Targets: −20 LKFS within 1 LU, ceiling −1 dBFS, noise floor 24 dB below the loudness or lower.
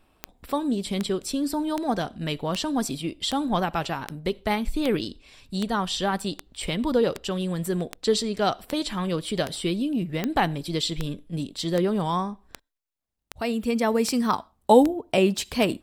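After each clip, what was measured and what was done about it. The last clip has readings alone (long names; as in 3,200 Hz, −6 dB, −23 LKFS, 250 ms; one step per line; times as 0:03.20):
number of clicks 21; integrated loudness −26.0 LKFS; sample peak −4.0 dBFS; target loudness −20.0 LKFS
→ click removal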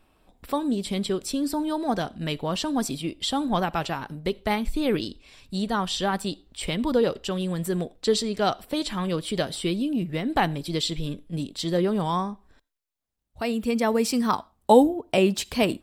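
number of clicks 0; integrated loudness −26.0 LKFS; sample peak −4.0 dBFS; target loudness −20.0 LKFS
→ level +6 dB
brickwall limiter −1 dBFS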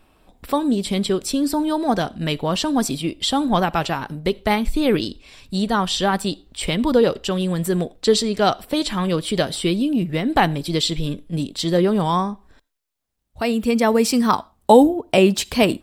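integrated loudness −20.0 LKFS; sample peak −1.0 dBFS; background noise floor −63 dBFS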